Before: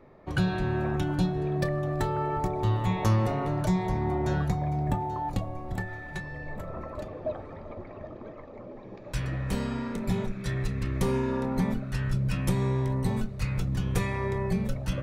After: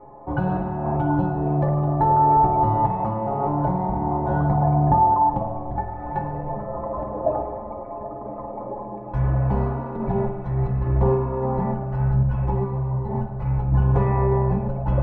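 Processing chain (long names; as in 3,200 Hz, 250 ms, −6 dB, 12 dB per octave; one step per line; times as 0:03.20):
in parallel at +3 dB: brickwall limiter −21 dBFS, peak gain reduction 8.5 dB
on the sum: sample-and-hold tremolo
low-pass with resonance 870 Hz, resonance Q 4.9
stiff-string resonator 62 Hz, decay 0.27 s, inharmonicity 0.03
spring reverb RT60 1.3 s, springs 48 ms, chirp 80 ms, DRR 5 dB
0:12.23–0:13.15: string-ensemble chorus
level +7.5 dB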